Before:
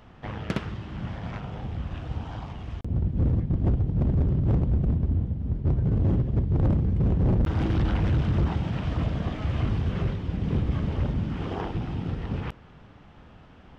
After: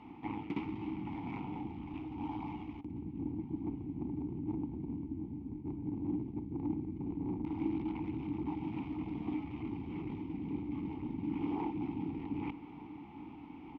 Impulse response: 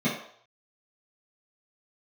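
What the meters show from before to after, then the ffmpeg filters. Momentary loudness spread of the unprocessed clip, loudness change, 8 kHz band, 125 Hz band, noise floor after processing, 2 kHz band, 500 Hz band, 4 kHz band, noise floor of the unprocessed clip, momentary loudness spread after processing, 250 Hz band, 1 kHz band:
11 LU, −12.5 dB, can't be measured, −20.0 dB, −50 dBFS, −12.5 dB, −11.0 dB, below −15 dB, −50 dBFS, 7 LU, −6.0 dB, −7.0 dB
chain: -filter_complex "[0:a]lowshelf=frequency=150:gain=4,areverse,acompressor=threshold=-32dB:ratio=6,areverse,aeval=exprs='(tanh(28.2*val(0)+0.4)-tanh(0.4))/28.2':channel_layout=same,asplit=3[link_01][link_02][link_03];[link_01]bandpass=frequency=300:width_type=q:width=8,volume=0dB[link_04];[link_02]bandpass=frequency=870:width_type=q:width=8,volume=-6dB[link_05];[link_03]bandpass=frequency=2240:width_type=q:width=8,volume=-9dB[link_06];[link_04][link_05][link_06]amix=inputs=3:normalize=0,aecho=1:1:1199|2398|3597:0.1|0.044|0.0194,volume=14.5dB"

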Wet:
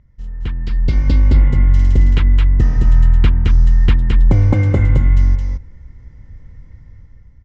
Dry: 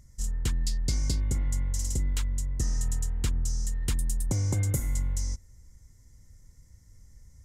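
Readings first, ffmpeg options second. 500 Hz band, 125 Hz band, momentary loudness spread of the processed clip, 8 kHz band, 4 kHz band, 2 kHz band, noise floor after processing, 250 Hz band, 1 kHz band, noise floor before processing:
+16.0 dB, +16.0 dB, 11 LU, below −10 dB, +5.5 dB, +15.5 dB, −44 dBFS, +16.0 dB, +16.0 dB, −56 dBFS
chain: -filter_complex "[0:a]lowpass=frequency=3000:width=0.5412,lowpass=frequency=3000:width=1.3066,dynaudnorm=framelen=230:gausssize=7:maxgain=12.5dB,asplit=2[link_01][link_02];[link_02]aecho=0:1:218:0.668[link_03];[link_01][link_03]amix=inputs=2:normalize=0,volume=2.5dB"

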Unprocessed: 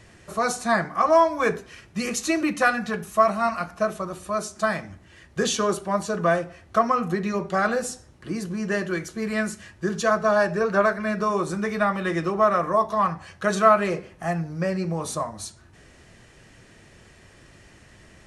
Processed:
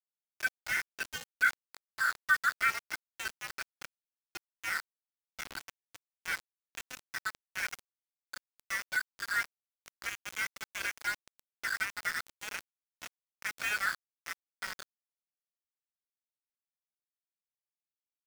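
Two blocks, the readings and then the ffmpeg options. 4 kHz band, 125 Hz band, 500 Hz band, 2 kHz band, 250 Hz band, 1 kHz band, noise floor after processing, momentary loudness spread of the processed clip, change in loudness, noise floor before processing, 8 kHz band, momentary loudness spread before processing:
−6.5 dB, −30.0 dB, −34.5 dB, −3.5 dB, −34.0 dB, −17.5 dB, below −85 dBFS, 20 LU, −11.0 dB, −52 dBFS, −10.0 dB, 11 LU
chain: -af "lowpass=frequency=3200:width_type=q:width=0.5098,lowpass=frequency=3200:width_type=q:width=0.6013,lowpass=frequency=3200:width_type=q:width=0.9,lowpass=frequency=3200:width_type=q:width=2.563,afreqshift=-3800,firequalizer=gain_entry='entry(250,0);entry(380,-23);entry(770,-17);entry(1500,10);entry(2900,-29)':delay=0.05:min_phase=1,aeval=exprs='val(0)*gte(abs(val(0)),0.0237)':channel_layout=same"

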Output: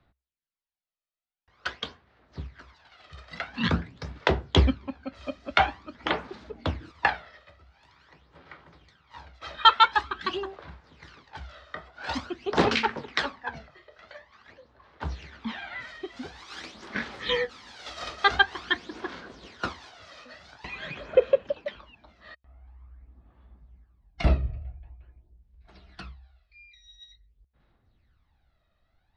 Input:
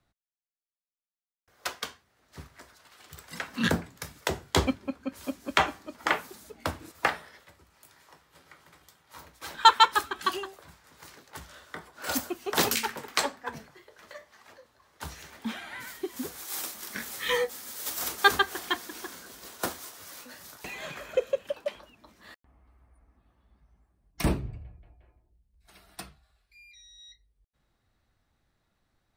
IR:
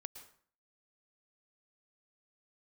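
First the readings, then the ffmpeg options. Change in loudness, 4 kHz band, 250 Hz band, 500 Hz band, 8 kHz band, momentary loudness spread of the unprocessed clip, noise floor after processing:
+1.5 dB, +1.0 dB, +1.5 dB, +3.5 dB, −15.0 dB, 22 LU, −75 dBFS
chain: -af "aphaser=in_gain=1:out_gain=1:delay=1.6:decay=0.57:speed=0.47:type=sinusoidal,lowpass=frequency=4400:width=0.5412,lowpass=frequency=4400:width=1.3066,equalizer=frequency=65:width=6.9:gain=8.5"

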